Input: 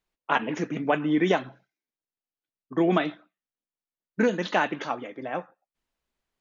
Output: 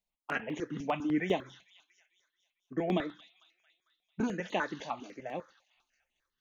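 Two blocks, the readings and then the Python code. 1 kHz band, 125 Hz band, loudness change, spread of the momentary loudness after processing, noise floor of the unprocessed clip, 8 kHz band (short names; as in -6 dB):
-9.5 dB, -7.0 dB, -8.5 dB, 11 LU, under -85 dBFS, n/a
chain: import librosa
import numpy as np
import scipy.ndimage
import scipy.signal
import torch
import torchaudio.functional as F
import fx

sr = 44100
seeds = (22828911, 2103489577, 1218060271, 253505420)

y = fx.echo_wet_highpass(x, sr, ms=224, feedback_pct=54, hz=4800.0, wet_db=-5)
y = fx.phaser_held(y, sr, hz=10.0, low_hz=350.0, high_hz=5100.0)
y = F.gain(torch.from_numpy(y), -5.0).numpy()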